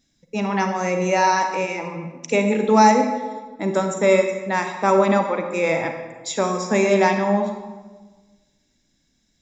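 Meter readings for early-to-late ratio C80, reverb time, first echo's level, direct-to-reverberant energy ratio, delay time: 8.0 dB, 1.3 s, no echo, 5.0 dB, no echo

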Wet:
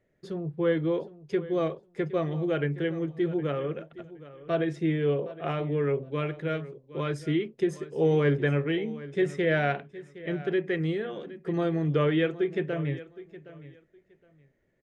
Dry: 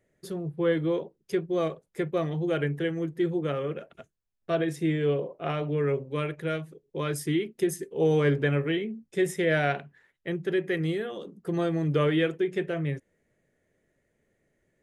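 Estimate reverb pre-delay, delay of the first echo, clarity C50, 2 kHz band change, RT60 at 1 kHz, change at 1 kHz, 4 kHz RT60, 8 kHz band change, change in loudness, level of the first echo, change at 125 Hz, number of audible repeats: no reverb, 766 ms, no reverb, -1.0 dB, no reverb, -0.5 dB, no reverb, under -10 dB, -0.5 dB, -17.0 dB, 0.0 dB, 2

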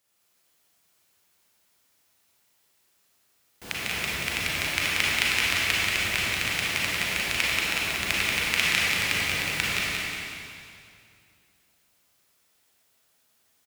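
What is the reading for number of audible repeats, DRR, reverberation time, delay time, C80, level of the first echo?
1, -7.5 dB, 2.4 s, 183 ms, -4.0 dB, -4.5 dB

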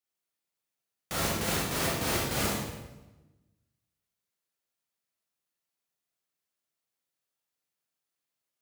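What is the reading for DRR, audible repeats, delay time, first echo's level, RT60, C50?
-5.0 dB, no echo, no echo, no echo, 1.1 s, -1.0 dB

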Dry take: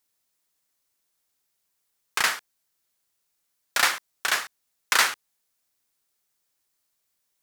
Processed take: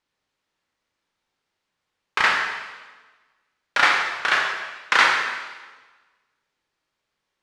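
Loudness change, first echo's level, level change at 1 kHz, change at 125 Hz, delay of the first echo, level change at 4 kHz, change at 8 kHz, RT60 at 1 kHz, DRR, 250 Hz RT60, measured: +4.0 dB, no echo, +7.5 dB, no reading, no echo, +2.0 dB, -8.5 dB, 1.3 s, 0.5 dB, 1.4 s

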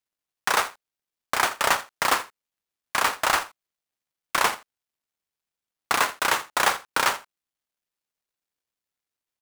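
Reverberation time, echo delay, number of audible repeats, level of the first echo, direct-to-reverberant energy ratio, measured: no reverb, 83 ms, 1, -17.5 dB, no reverb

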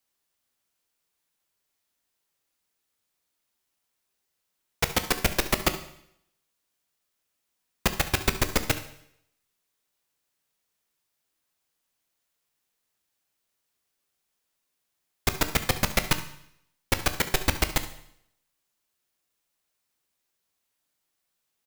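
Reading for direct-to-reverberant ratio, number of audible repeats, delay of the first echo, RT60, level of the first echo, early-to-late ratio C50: 8.5 dB, 1, 70 ms, 0.70 s, -16.0 dB, 11.5 dB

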